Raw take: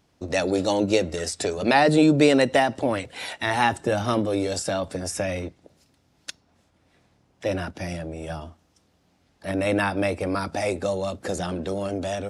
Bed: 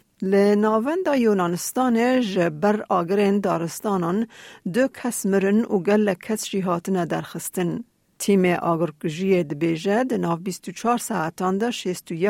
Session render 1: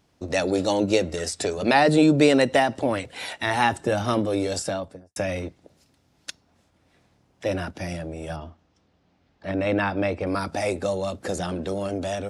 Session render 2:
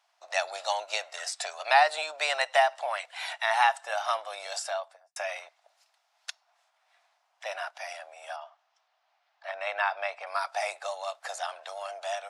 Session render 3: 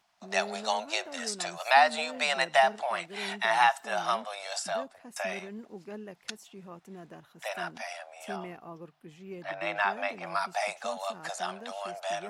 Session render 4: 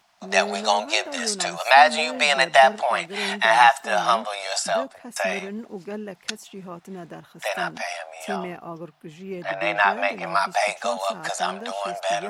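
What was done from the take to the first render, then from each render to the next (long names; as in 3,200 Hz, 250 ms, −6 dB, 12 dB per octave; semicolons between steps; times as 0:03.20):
0:04.58–0:05.16: fade out and dull; 0:08.36–0:10.27: high-frequency loss of the air 130 metres
Chebyshev high-pass filter 670 Hz, order 5; high-shelf EQ 7,000 Hz −8.5 dB
mix in bed −23.5 dB
level +9 dB; brickwall limiter −2 dBFS, peak gain reduction 3 dB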